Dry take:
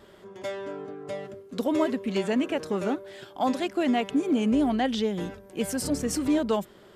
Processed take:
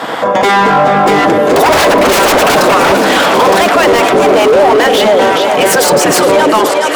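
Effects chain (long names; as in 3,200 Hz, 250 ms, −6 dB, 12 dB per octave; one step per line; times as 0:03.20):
source passing by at 0:02.16, 5 m/s, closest 2.3 metres
on a send at −23.5 dB: convolution reverb RT60 0.95 s, pre-delay 5 ms
on the sum: gate on every frequency bin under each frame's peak −10 dB weak
high-pass filter 150 Hz 24 dB per octave
high-shelf EQ 7,800 Hz −5 dB
in parallel at 0 dB: downward compressor, threshold −51 dBFS, peak gain reduction 19 dB
on the sum: sine wavefolder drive 18 dB, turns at −21 dBFS
automatic gain control gain up to 6 dB
feedback echo with a high-pass in the loop 420 ms, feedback 70%, high-pass 550 Hz, level −12 dB
hard clipping −24 dBFS, distortion −8 dB
parametric band 590 Hz +12.5 dB 2.8 octaves
boost into a limiter +19 dB
level −1 dB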